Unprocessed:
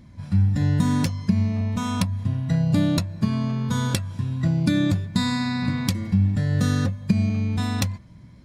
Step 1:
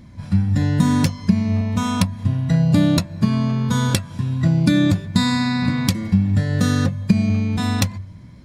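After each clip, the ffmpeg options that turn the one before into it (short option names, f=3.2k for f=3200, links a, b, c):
-af "bandreject=f=48.09:t=h:w=4,bandreject=f=96.18:t=h:w=4,bandreject=f=144.27:t=h:w=4,volume=5dB"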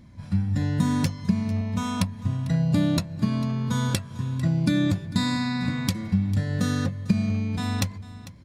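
-af "aecho=1:1:448:0.133,volume=-6.5dB"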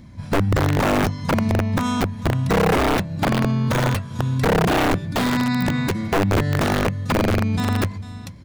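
-filter_complex "[0:a]aeval=exprs='(mod(8.41*val(0)+1,2)-1)/8.41':c=same,acrossover=split=2700[a][b];[b]acompressor=threshold=-35dB:ratio=4:attack=1:release=60[c];[a][c]amix=inputs=2:normalize=0,volume=6.5dB"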